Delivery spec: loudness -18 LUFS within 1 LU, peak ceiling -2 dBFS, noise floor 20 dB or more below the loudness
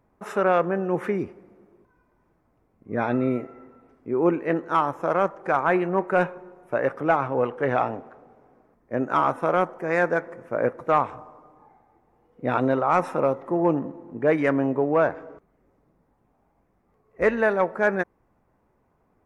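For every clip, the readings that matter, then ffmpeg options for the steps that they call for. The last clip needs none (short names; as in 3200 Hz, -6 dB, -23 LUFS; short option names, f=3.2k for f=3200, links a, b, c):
loudness -24.0 LUFS; peak -9.0 dBFS; loudness target -18.0 LUFS
-> -af "volume=6dB"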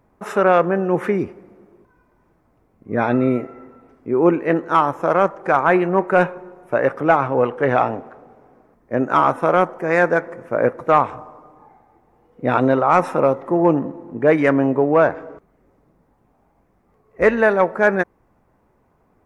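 loudness -18.0 LUFS; peak -3.0 dBFS; noise floor -61 dBFS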